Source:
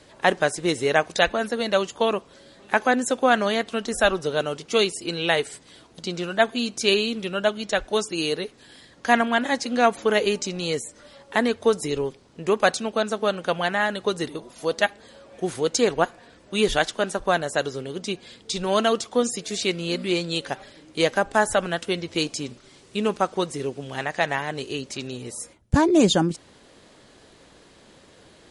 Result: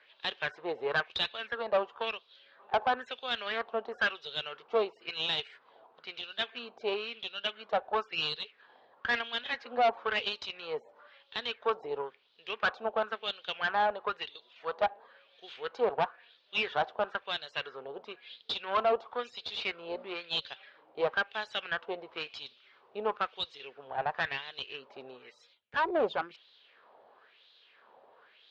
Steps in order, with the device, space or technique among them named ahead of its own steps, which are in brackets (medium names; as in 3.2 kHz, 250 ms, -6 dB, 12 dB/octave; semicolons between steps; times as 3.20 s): wah-wah guitar rig (wah-wah 0.99 Hz 750–3900 Hz, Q 3.3; valve stage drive 28 dB, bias 0.65; cabinet simulation 88–4000 Hz, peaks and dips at 120 Hz -5 dB, 180 Hz -9 dB, 300 Hz -8 dB, 450 Hz +4 dB, 2 kHz -5 dB); trim +6.5 dB